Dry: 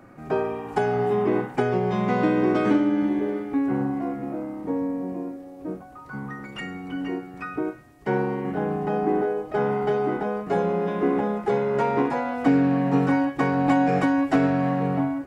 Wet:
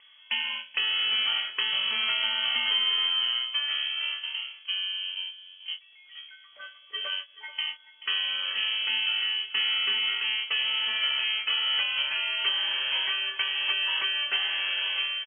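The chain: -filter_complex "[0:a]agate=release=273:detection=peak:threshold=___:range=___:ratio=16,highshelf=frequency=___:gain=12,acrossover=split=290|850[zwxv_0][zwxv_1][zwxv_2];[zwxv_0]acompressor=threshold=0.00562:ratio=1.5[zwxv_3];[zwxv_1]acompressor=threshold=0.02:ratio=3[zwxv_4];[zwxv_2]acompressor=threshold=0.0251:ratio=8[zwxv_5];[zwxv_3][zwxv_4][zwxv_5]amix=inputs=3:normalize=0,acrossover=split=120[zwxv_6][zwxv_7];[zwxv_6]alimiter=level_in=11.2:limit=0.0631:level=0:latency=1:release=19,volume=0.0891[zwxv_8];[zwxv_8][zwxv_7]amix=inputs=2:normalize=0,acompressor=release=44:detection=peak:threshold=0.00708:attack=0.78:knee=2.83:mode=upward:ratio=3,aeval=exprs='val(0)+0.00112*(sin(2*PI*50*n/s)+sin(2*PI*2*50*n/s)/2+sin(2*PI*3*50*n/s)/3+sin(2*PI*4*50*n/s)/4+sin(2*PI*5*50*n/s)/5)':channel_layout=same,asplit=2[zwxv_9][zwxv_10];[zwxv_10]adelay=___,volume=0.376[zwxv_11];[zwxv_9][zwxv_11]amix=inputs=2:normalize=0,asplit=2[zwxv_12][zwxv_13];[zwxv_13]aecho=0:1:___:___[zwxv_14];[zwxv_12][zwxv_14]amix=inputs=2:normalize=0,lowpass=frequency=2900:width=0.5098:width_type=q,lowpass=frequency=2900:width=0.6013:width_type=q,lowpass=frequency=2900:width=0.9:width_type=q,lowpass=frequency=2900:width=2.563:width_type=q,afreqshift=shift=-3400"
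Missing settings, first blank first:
0.0316, 0.0224, 2300, 24, 433, 0.158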